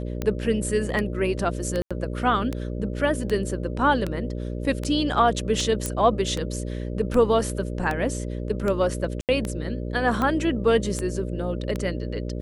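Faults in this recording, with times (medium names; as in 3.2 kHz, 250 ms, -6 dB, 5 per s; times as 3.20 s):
buzz 60 Hz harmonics 10 -30 dBFS
tick 78 rpm -14 dBFS
1.82–1.91 s: dropout 86 ms
5.86 s: pop -11 dBFS
9.21–9.29 s: dropout 78 ms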